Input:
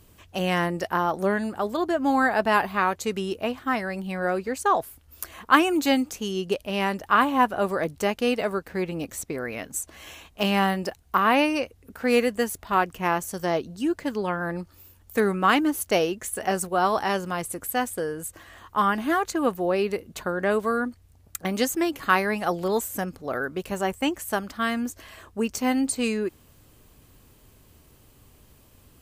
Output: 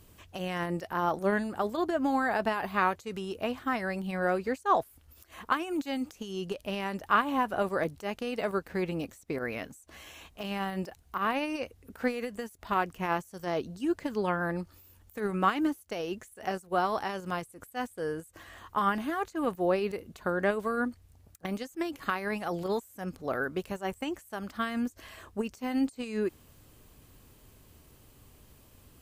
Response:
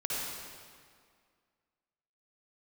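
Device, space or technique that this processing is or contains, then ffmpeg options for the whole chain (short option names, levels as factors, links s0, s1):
de-esser from a sidechain: -filter_complex "[0:a]asplit=2[s0][s1];[s1]highpass=f=6000:w=0.5412,highpass=f=6000:w=1.3066,apad=whole_len=1279356[s2];[s0][s2]sidechaincompress=threshold=0.00251:ratio=6:attack=2.8:release=60,volume=0.794"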